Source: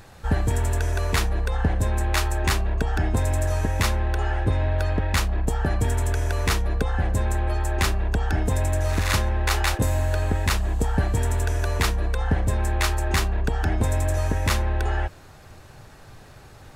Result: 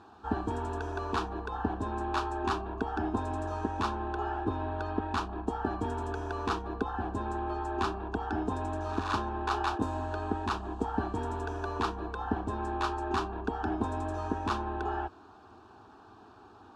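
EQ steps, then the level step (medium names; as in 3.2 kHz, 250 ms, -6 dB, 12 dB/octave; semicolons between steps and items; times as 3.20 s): band-pass 150–2400 Hz; static phaser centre 550 Hz, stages 6; 0.0 dB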